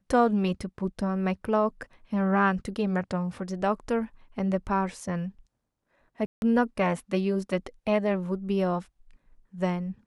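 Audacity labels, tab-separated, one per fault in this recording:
6.260000	6.420000	dropout 161 ms

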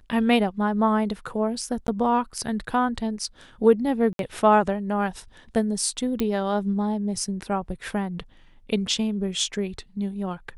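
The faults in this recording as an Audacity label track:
1.870000	1.880000	dropout 11 ms
4.130000	4.190000	dropout 62 ms
6.200000	6.200000	pop -12 dBFS

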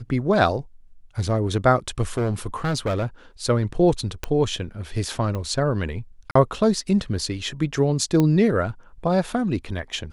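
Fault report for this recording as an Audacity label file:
2.170000	3.060000	clipped -19.5 dBFS
4.240000	4.240000	pop -12 dBFS
5.350000	5.350000	pop -17 dBFS
6.310000	6.350000	dropout 44 ms
8.200000	8.200000	pop -9 dBFS

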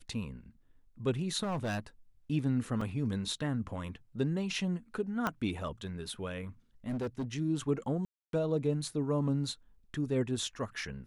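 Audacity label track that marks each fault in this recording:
1.430000	1.800000	clipped -30.5 dBFS
2.810000	2.810000	dropout 3.9 ms
5.270000	5.270000	pop -17 dBFS
6.880000	7.250000	clipped -31 dBFS
8.050000	8.330000	dropout 282 ms

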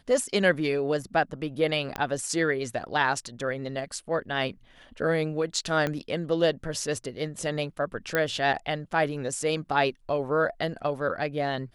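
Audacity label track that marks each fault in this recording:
1.960000	1.960000	pop -15 dBFS
5.870000	5.870000	pop -15 dBFS
8.150000	8.150000	pop -11 dBFS

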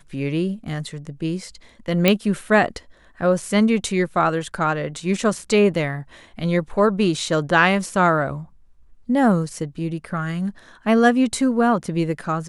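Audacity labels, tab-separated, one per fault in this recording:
2.080000	2.080000	pop -2 dBFS

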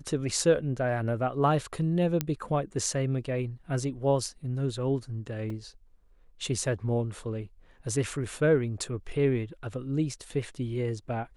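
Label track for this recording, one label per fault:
2.210000	2.210000	pop -12 dBFS
5.500000	5.500000	dropout 2.5 ms

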